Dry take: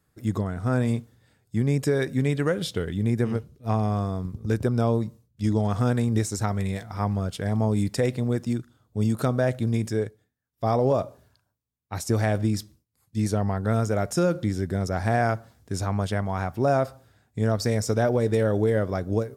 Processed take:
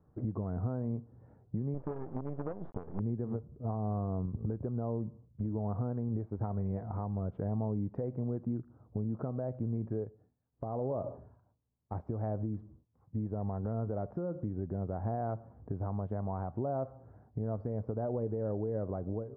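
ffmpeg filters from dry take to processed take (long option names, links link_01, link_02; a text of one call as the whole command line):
ffmpeg -i in.wav -filter_complex "[0:a]asettb=1/sr,asplit=3[link_01][link_02][link_03];[link_01]atrim=end=1.744[link_04];[link_02]atrim=start=1.74:end=3,asetpts=PTS-STARTPTS,afade=type=in:duration=0.004:curve=qsin,afade=type=out:start_time=1.256:duration=0.004:curve=qsin,acrusher=bits=4:dc=4:mix=0:aa=0.000001[link_05];[link_03]atrim=start=2.996[link_06];[link_04][link_05]acrossfade=duration=0.004:curve1=hsin:curve2=qsin[link_07];[link_07][link_06]acrossfade=duration=0.004:curve1=qsin:curve2=hsin,asplit=3[link_08][link_09][link_10];[link_08]afade=type=out:start_time=10.04:duration=0.02[link_11];[link_09]acompressor=threshold=-29dB:ratio=6:attack=3.2:release=140:knee=1:detection=peak,afade=type=in:start_time=10.04:duration=0.02,afade=type=out:start_time=11.94:duration=0.02[link_12];[link_10]afade=type=in:start_time=11.94:duration=0.02[link_13];[link_11][link_12][link_13]amix=inputs=3:normalize=0,acompressor=threshold=-35dB:ratio=10,lowpass=frequency=1000:width=0.5412,lowpass=frequency=1000:width=1.3066,alimiter=level_in=7.5dB:limit=-24dB:level=0:latency=1:release=215,volume=-7.5dB,volume=5.5dB" out.wav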